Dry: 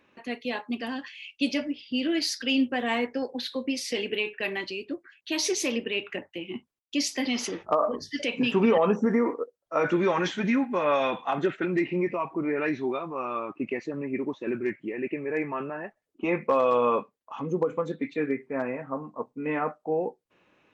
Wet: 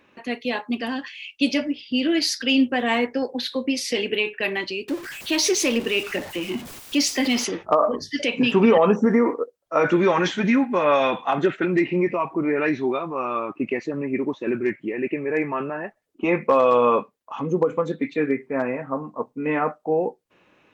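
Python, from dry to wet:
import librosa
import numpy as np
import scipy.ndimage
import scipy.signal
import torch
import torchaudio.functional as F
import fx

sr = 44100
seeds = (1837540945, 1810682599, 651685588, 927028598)

y = fx.zero_step(x, sr, step_db=-37.0, at=(4.88, 7.44))
y = y * 10.0 ** (5.5 / 20.0)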